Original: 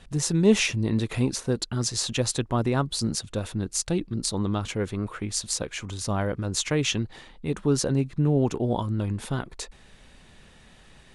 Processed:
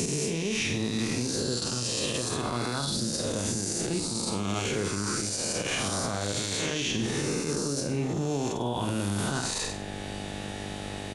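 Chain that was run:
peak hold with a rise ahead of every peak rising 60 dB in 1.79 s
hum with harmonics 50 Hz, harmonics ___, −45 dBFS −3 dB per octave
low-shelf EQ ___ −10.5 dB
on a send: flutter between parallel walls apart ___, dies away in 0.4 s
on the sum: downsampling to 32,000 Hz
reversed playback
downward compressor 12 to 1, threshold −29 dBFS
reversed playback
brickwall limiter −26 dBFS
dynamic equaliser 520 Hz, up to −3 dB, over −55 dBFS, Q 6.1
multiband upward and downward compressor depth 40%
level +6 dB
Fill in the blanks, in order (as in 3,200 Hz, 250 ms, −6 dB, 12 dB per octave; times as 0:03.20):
17, 63 Hz, 8.5 metres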